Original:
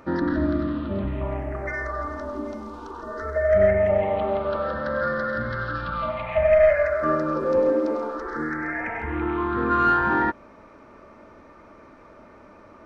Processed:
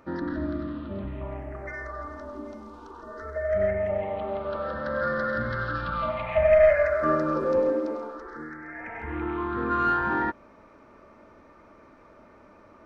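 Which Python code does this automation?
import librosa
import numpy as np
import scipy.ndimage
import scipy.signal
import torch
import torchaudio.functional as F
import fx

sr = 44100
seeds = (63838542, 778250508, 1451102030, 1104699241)

y = fx.gain(x, sr, db=fx.line((4.23, -7.0), (5.25, -1.0), (7.39, -1.0), (8.64, -12.5), (9.11, -4.5)))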